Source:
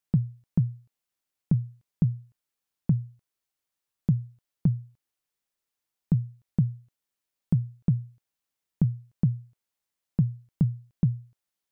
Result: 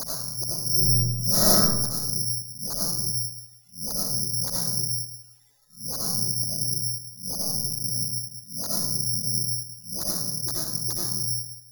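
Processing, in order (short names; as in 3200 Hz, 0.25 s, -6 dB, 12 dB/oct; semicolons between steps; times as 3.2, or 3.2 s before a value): spectral swells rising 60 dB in 0.32 s; 7.59–8.82 Chebyshev high-pass 190 Hz, order 2; 10.22–11.07 low shelf 350 Hz -11.5 dB; limiter -26.5 dBFS, peak gain reduction 15 dB; AGC gain up to 10.5 dB; flipped gate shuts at -33 dBFS, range -33 dB; loudest bins only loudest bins 8; sine folder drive 14 dB, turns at -36.5 dBFS; digital reverb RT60 0.84 s, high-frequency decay 0.6×, pre-delay 45 ms, DRR -4.5 dB; careless resampling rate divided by 8×, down filtered, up zero stuff; 0.69–1.6 reverb throw, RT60 1 s, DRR -11 dB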